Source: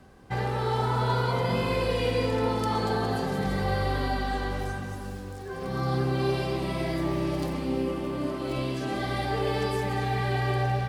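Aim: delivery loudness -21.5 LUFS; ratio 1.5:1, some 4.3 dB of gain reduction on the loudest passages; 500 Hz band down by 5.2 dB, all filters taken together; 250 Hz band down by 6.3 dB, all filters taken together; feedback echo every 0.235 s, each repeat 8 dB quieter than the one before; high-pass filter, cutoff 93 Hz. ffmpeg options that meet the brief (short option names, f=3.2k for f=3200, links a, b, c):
-af "highpass=93,equalizer=f=250:t=o:g=-7.5,equalizer=f=500:t=o:g=-4,acompressor=threshold=-37dB:ratio=1.5,aecho=1:1:235|470|705|940|1175:0.398|0.159|0.0637|0.0255|0.0102,volume=12.5dB"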